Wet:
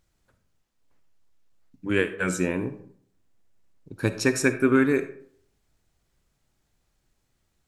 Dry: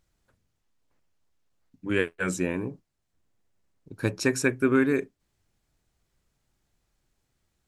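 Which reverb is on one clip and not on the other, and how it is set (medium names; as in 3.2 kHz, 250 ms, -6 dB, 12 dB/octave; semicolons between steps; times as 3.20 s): algorithmic reverb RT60 0.6 s, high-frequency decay 0.55×, pre-delay 15 ms, DRR 11 dB; trim +2 dB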